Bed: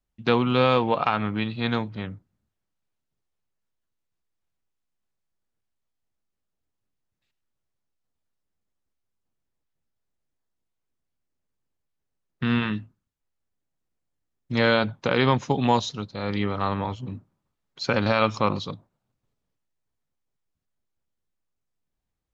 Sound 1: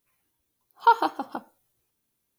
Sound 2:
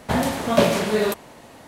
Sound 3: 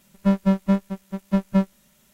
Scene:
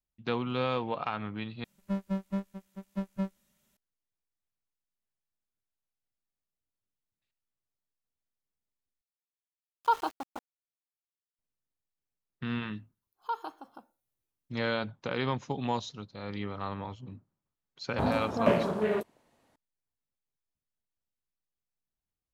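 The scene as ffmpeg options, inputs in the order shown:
ffmpeg -i bed.wav -i cue0.wav -i cue1.wav -i cue2.wav -filter_complex "[1:a]asplit=2[link_01][link_02];[0:a]volume=-10.5dB[link_03];[link_01]aeval=exprs='val(0)*gte(abs(val(0)),0.02)':channel_layout=same[link_04];[2:a]afwtdn=0.0447[link_05];[link_03]asplit=3[link_06][link_07][link_08];[link_06]atrim=end=1.644[link_09];[3:a]atrim=end=2.13,asetpts=PTS-STARTPTS,volume=-13.5dB[link_10];[link_07]atrim=start=3.766:end=9.014[link_11];[link_04]atrim=end=2.38,asetpts=PTS-STARTPTS,volume=-8dB[link_12];[link_08]atrim=start=11.386[link_13];[link_02]atrim=end=2.38,asetpts=PTS-STARTPTS,volume=-16dB,afade=type=in:duration=0.004:curve=hsin,afade=type=out:start_time=2.376:duration=0.004:curve=hsin,adelay=12420[link_14];[link_05]atrim=end=1.67,asetpts=PTS-STARTPTS,volume=-7.5dB,afade=type=in:duration=0.004:curve=hsin,afade=type=out:start_time=1.666:duration=0.004:curve=hsin,adelay=17890[link_15];[link_09][link_10]acrossfade=duration=0.004:curve1=hsin:curve2=hsin[link_16];[link_16][link_11]acrossfade=duration=0.004:curve1=hsin:curve2=hsin[link_17];[link_17][link_12]acrossfade=duration=0.004:curve1=hsin:curve2=hsin[link_18];[link_18][link_13]acrossfade=duration=0.004:curve1=hsin:curve2=hsin[link_19];[link_19][link_14][link_15]amix=inputs=3:normalize=0" out.wav

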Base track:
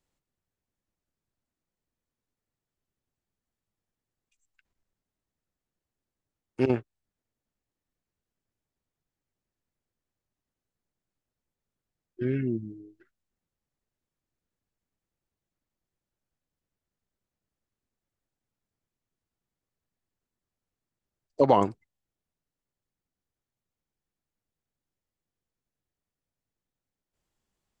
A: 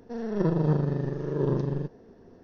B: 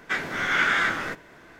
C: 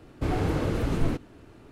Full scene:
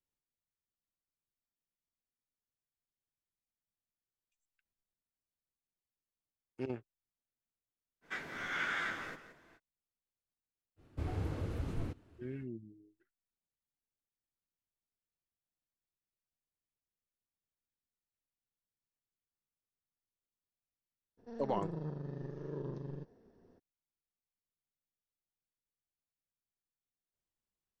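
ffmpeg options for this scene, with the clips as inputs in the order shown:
ffmpeg -i bed.wav -i cue0.wav -i cue1.wav -i cue2.wav -filter_complex "[0:a]volume=-15dB[link_01];[2:a]aecho=1:1:173:0.266[link_02];[3:a]equalizer=frequency=84:width_type=o:width=0.77:gain=10[link_03];[1:a]alimiter=limit=-18dB:level=0:latency=1:release=413[link_04];[link_02]atrim=end=1.59,asetpts=PTS-STARTPTS,volume=-14.5dB,afade=type=in:duration=0.05,afade=type=out:start_time=1.54:duration=0.05,adelay=8010[link_05];[link_03]atrim=end=1.71,asetpts=PTS-STARTPTS,volume=-15dB,afade=type=in:duration=0.05,afade=type=out:start_time=1.66:duration=0.05,adelay=10760[link_06];[link_04]atrim=end=2.43,asetpts=PTS-STARTPTS,volume=-13dB,afade=type=in:duration=0.02,afade=type=out:start_time=2.41:duration=0.02,adelay=21170[link_07];[link_01][link_05][link_06][link_07]amix=inputs=4:normalize=0" out.wav

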